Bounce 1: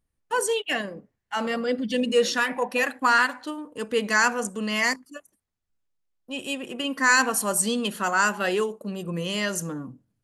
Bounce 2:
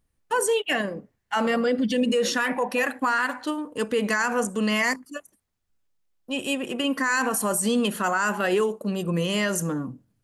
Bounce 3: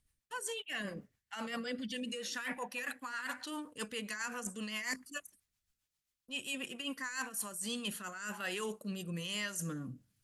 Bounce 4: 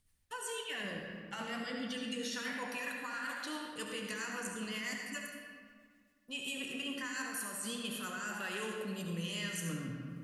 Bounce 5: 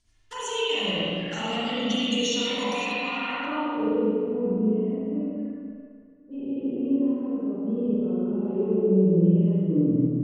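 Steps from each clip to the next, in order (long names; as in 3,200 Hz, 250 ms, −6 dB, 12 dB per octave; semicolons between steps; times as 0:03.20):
dynamic equaliser 4,400 Hz, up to −6 dB, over −40 dBFS, Q 0.98; brickwall limiter −20 dBFS, peak gain reduction 10.5 dB; level +5 dB
guitar amp tone stack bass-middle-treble 5-5-5; reversed playback; downward compressor 6 to 1, threshold −45 dBFS, peak gain reduction 15.5 dB; reversed playback; rotating-speaker cabinet horn 7.5 Hz, later 1.2 Hz, at 0:06.88; level +10 dB
downward compressor 3 to 1, threshold −43 dBFS, peak gain reduction 8 dB; flanger 1 Hz, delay 9.3 ms, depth 6.6 ms, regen −62%; convolution reverb RT60 1.9 s, pre-delay 65 ms, DRR 0.5 dB; level +7 dB
flanger swept by the level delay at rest 3.1 ms, full sweep at −41 dBFS; low-pass filter sweep 6,200 Hz → 380 Hz, 0:02.82–0:04.03; spring reverb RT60 1.6 s, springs 37/47 ms, chirp 55 ms, DRR −8.5 dB; level +7.5 dB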